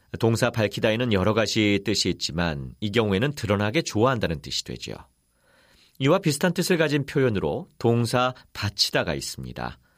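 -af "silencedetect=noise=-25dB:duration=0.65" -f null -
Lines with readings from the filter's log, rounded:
silence_start: 4.96
silence_end: 6.01 | silence_duration: 1.04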